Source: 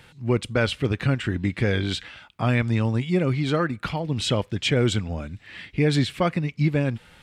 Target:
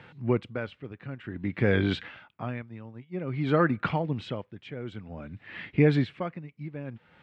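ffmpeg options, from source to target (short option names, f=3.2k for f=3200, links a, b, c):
-filter_complex "[0:a]asplit=3[a][b][c];[a]afade=t=out:st=2.58:d=0.02[d];[b]agate=range=-33dB:threshold=-18dB:ratio=3:detection=peak,afade=t=in:st=2.58:d=0.02,afade=t=out:st=3.32:d=0.02[e];[c]afade=t=in:st=3.32:d=0.02[f];[d][e][f]amix=inputs=3:normalize=0,highpass=110,lowpass=2.2k,aeval=exprs='val(0)*pow(10,-19*(0.5-0.5*cos(2*PI*0.53*n/s))/20)':c=same,volume=2.5dB"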